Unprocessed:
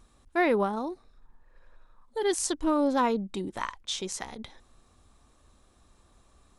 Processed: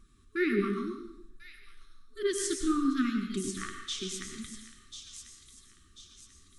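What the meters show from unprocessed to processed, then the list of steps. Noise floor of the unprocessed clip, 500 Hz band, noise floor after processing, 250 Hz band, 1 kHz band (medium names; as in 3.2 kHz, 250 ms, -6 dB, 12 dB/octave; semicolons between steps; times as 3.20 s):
-63 dBFS, -5.5 dB, -61 dBFS, -0.5 dB, -11.0 dB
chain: FFT band-reject 430–1100 Hz; bass shelf 460 Hz +3.5 dB; on a send: feedback echo behind a high-pass 1041 ms, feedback 42%, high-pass 3.7 kHz, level -6 dB; on the sum: flange 1.8 Hz, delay 3.8 ms, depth 9.6 ms, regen +43%; plate-style reverb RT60 0.75 s, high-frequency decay 1×, pre-delay 85 ms, DRR 5 dB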